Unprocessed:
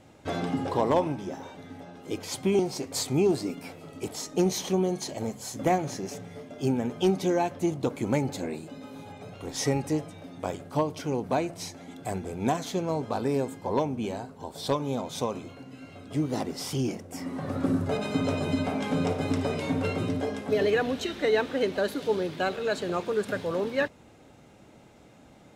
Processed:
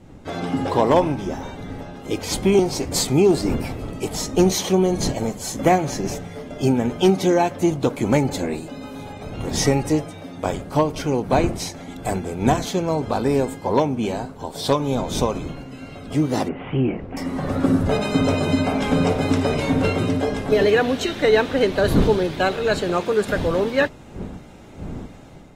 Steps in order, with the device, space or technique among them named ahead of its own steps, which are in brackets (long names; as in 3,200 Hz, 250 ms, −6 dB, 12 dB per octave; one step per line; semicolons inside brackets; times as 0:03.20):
0:16.48–0:17.17: Butterworth low-pass 2,900 Hz 72 dB per octave
smartphone video outdoors (wind on the microphone −40 dBFS; automatic gain control gain up to 8 dB; AAC 48 kbit/s 48,000 Hz)